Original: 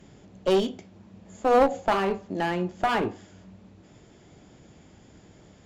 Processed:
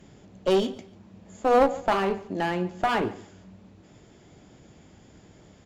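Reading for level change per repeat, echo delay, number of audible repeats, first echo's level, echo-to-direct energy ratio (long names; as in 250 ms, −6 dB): −12.0 dB, 143 ms, 2, −20.0 dB, −19.5 dB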